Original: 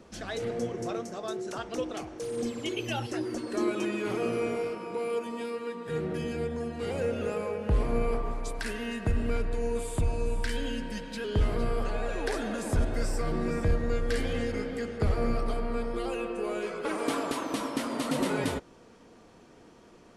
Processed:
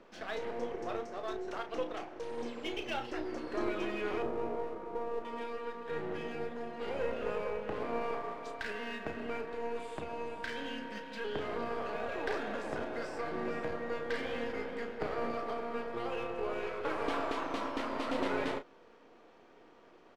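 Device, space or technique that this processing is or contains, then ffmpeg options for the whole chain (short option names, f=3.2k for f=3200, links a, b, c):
crystal radio: -filter_complex "[0:a]asettb=1/sr,asplit=3[a][b][c];[a]atrim=end=4.224[d];[b]atrim=start=4.22:end=5.25,asetpts=PTS-STARTPTS,afade=t=in:d=0.004:c=qsin,afade=t=out:st=1.026:d=0.004:c=qsin,lowpass=1k[e];[c]atrim=start=5.246[f];[d][e]acrossfade=d=0.004:c1=hsin:c2=qsin[g];[g][f]acrossfade=d=0.004:c1=qsin:c2=hsin,highpass=350,lowpass=3.2k,aeval=exprs='if(lt(val(0),0),0.447*val(0),val(0))':c=same,asplit=2[h][i];[i]adelay=33,volume=-8.5dB[j];[h][j]amix=inputs=2:normalize=0"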